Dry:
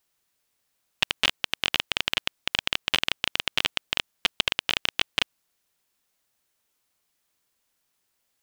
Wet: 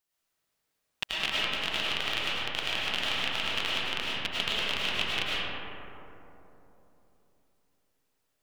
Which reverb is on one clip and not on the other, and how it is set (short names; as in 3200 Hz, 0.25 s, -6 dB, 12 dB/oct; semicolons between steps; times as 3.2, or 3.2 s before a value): digital reverb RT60 3.4 s, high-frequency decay 0.3×, pre-delay 65 ms, DRR -8 dB; gain -10 dB